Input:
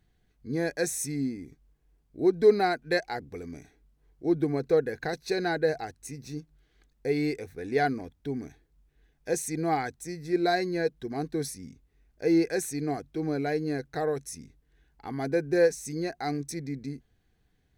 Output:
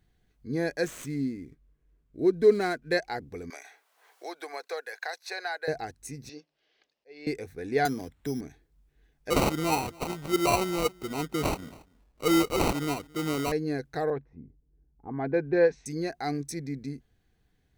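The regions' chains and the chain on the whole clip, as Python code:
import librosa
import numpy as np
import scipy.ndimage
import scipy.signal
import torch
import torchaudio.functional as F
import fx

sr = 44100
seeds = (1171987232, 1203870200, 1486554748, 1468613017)

y = fx.chain(x, sr, fx.median_filter(points=9),
    fx.peak_eq(hz=800.0, db=-11.5, octaves=0.25), at=(0.84, 2.92))
y = fx.chain(y, sr, fx.highpass(hz=690.0, slope=24),
    fx.band_squash(depth_pct=70), at=(3.5, 5.68))
y = fx.chain(y, sr, fx.cabinet(low_hz=480.0, low_slope=12, high_hz=5600.0, hz=(580.0, 1400.0, 2800.0, 5100.0), db=(8, -5, 7, 6)),
    fx.auto_swell(attack_ms=666.0), at=(6.29, 7.27))
y = fx.chain(y, sr, fx.high_shelf(hz=9300.0, db=10.0),
    fx.resample_bad(factor=8, down='none', up='hold'),
    fx.band_squash(depth_pct=40), at=(7.85, 8.41))
y = fx.chain(y, sr, fx.high_shelf_res(hz=3700.0, db=10.0, q=1.5),
    fx.sample_hold(seeds[0], rate_hz=1700.0, jitter_pct=0),
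    fx.echo_single(ms=279, db=-23.5), at=(9.3, 13.52))
y = fx.chain(y, sr, fx.env_lowpass(base_hz=310.0, full_db=-22.0),
    fx.lowpass(hz=3700.0, slope=24),
    fx.peak_eq(hz=930.0, db=5.0, octaves=0.39), at=(14.1, 15.86))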